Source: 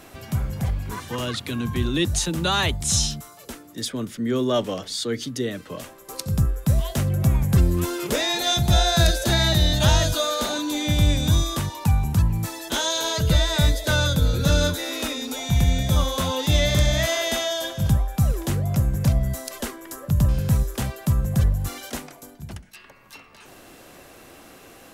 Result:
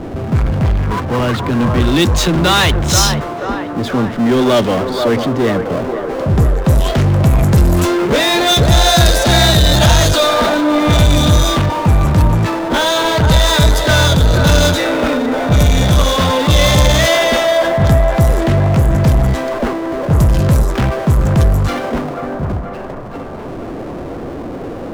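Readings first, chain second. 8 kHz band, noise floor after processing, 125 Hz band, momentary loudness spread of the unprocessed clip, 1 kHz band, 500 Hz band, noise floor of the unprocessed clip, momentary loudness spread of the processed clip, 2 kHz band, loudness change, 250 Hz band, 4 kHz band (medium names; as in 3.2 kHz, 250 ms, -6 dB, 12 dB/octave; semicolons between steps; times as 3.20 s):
+6.5 dB, -26 dBFS, +9.0 dB, 12 LU, +13.5 dB, +13.0 dB, -47 dBFS, 11 LU, +11.0 dB, +9.5 dB, +11.5 dB, +8.5 dB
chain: level-controlled noise filter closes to 410 Hz, open at -15 dBFS; power-law waveshaper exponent 0.5; feedback echo behind a band-pass 483 ms, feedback 62%, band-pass 790 Hz, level -4.5 dB; trim +3.5 dB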